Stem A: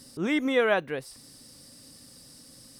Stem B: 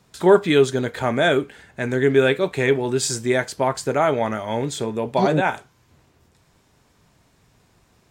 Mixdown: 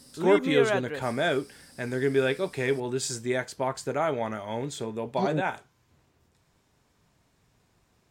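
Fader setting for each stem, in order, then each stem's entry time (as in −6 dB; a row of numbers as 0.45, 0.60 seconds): −3.0, −8.0 decibels; 0.00, 0.00 seconds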